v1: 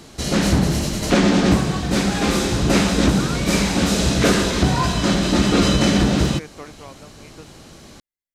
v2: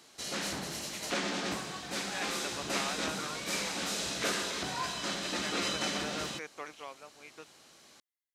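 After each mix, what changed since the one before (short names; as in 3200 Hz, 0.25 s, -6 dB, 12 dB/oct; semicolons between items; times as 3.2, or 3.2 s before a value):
background -10.5 dB; master: add HPF 1000 Hz 6 dB/oct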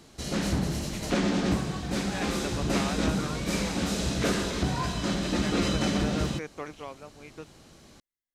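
master: remove HPF 1000 Hz 6 dB/oct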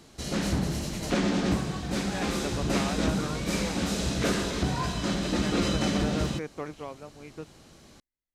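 speech: add tilt -2 dB/oct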